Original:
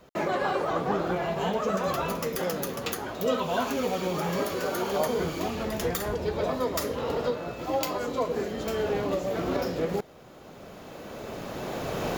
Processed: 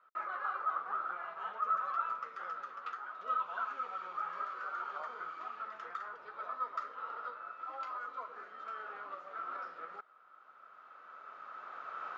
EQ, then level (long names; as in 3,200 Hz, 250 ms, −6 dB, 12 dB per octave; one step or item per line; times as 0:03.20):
resonant band-pass 1,300 Hz, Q 13
high-frequency loss of the air 140 metres
spectral tilt +2.5 dB per octave
+5.5 dB